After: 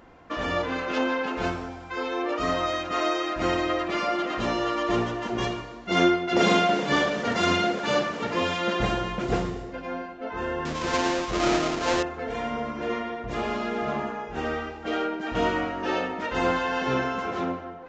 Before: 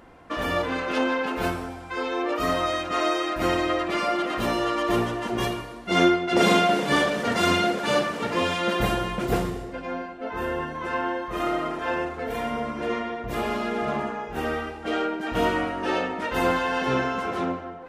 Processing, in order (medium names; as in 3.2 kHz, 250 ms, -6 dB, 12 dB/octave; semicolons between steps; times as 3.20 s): 10.65–12.03 s: square wave that keeps the level; resampled via 16 kHz; trim -1.5 dB